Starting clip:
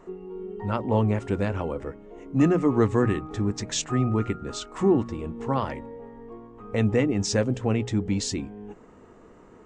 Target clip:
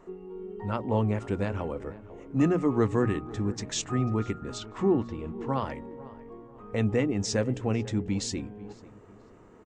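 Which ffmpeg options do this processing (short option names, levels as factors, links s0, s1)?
-filter_complex "[0:a]asettb=1/sr,asplit=3[s0][s1][s2];[s0]atrim=end=4.584[s3];[s1]atrim=start=4.58:end=5.49,asetpts=PTS-STARTPTS,afade=t=in:d=0.004:c=qsin,afade=t=out:st=0.906:d=0.004:c=qsin,lowpass=5100[s4];[s2]atrim=start=5.486[s5];[s3][s4]acrossfade=d=0.004:c1=hsin:c2=qsin[s6];[s6][s5]acrossfade=d=0.004:c1=qsin:c2=hsin,asplit=2[s7][s8];[s8]adelay=493,lowpass=f=2200:p=1,volume=0.119,asplit=2[s9][s10];[s10]adelay=493,lowpass=f=2200:p=1,volume=0.42,asplit=2[s11][s12];[s12]adelay=493,lowpass=f=2200:p=1,volume=0.42[s13];[s9][s11][s13]amix=inputs=3:normalize=0[s14];[s7][s14]amix=inputs=2:normalize=0,volume=0.668"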